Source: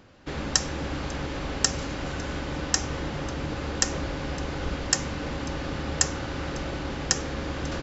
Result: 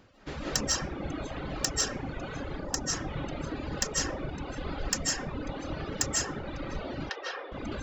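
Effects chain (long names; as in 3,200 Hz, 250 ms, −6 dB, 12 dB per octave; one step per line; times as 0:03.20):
0:02.42–0:02.93: parametric band 2,900 Hz −6 dB 1.4 octaves
reverb reduction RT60 2 s
comb and all-pass reverb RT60 1.8 s, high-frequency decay 0.3×, pre-delay 115 ms, DRR −6 dB
reverb reduction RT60 1.5 s
0:07.09–0:07.52: elliptic band-pass filter 430–3,900 Hz, stop band 40 dB
soft clipping −10.5 dBFS, distortion −18 dB
level −4.5 dB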